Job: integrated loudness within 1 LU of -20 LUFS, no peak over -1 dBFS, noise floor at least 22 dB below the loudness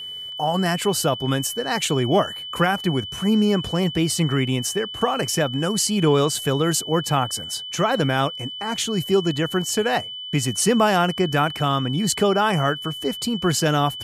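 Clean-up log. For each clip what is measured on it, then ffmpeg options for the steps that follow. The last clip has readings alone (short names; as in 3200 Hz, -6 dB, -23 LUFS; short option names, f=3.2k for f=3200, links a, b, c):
steady tone 3000 Hz; tone level -31 dBFS; loudness -21.5 LUFS; peak -7.0 dBFS; loudness target -20.0 LUFS
-> -af "bandreject=f=3k:w=30"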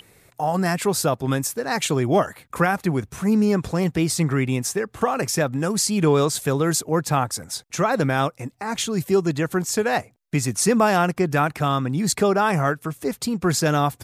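steady tone none; loudness -22.0 LUFS; peak -7.5 dBFS; loudness target -20.0 LUFS
-> -af "volume=2dB"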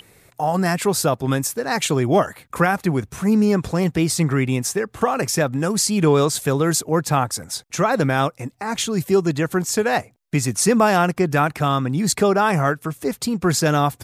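loudness -20.0 LUFS; peak -5.5 dBFS; noise floor -58 dBFS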